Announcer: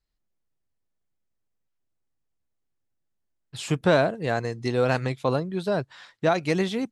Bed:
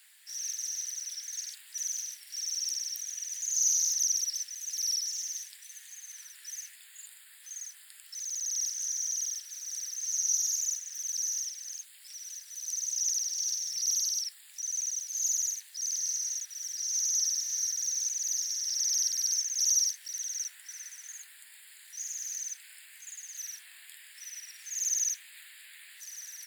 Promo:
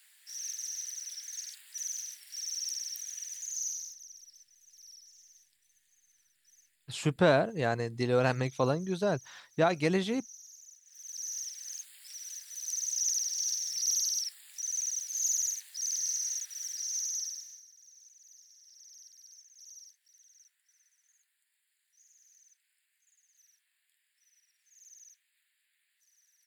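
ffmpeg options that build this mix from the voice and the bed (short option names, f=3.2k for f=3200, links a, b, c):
-filter_complex "[0:a]adelay=3350,volume=-4dB[a];[1:a]volume=19dB,afade=t=out:st=3.21:d=0.77:silence=0.105925,afade=t=in:st=10.82:d=0.96:silence=0.0794328,afade=t=out:st=16.62:d=1.01:silence=0.0562341[b];[a][b]amix=inputs=2:normalize=0"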